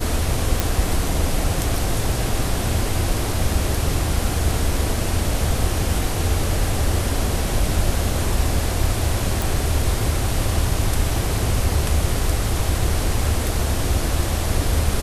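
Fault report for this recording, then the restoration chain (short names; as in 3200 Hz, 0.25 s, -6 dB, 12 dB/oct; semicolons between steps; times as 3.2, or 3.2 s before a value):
0.6 pop
9.42 pop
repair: de-click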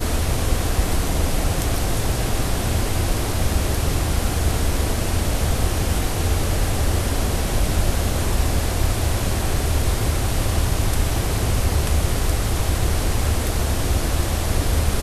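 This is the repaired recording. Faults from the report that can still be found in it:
none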